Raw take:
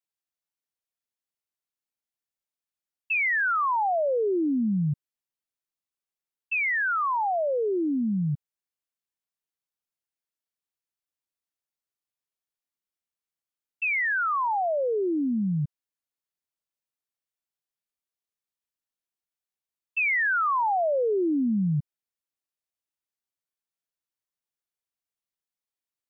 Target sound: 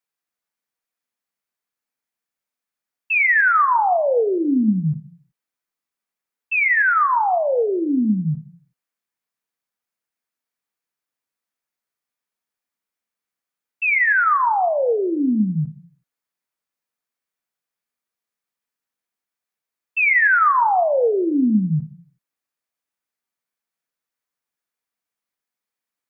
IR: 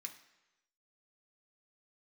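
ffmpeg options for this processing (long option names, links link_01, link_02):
-filter_complex "[0:a]asplit=2[link_01][link_02];[1:a]atrim=start_sample=2205,afade=type=out:start_time=0.43:duration=0.01,atrim=end_sample=19404,lowpass=2100[link_03];[link_02][link_03]afir=irnorm=-1:irlink=0,volume=5dB[link_04];[link_01][link_04]amix=inputs=2:normalize=0,volume=4dB"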